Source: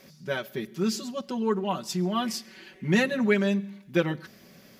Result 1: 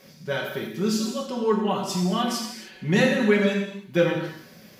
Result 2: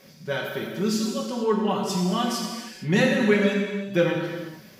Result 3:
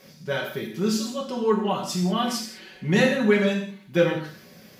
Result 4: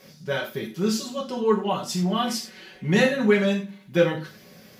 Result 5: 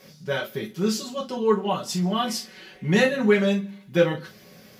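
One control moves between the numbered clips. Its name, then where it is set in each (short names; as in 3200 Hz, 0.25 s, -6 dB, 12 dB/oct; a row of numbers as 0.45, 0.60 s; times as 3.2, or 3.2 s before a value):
non-linear reverb, gate: 330, 500, 220, 130, 90 ms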